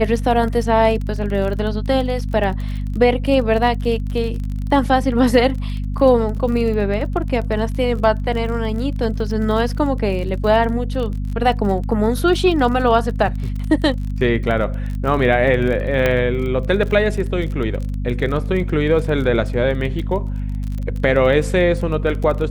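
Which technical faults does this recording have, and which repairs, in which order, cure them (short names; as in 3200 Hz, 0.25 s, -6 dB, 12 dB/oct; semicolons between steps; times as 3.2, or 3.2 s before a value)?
crackle 28/s -26 dBFS
hum 50 Hz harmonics 5 -23 dBFS
16.06 pop -5 dBFS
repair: de-click; de-hum 50 Hz, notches 5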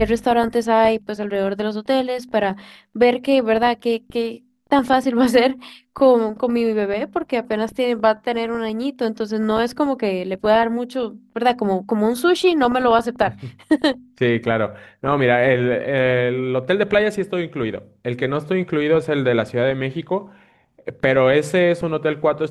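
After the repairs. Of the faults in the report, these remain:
none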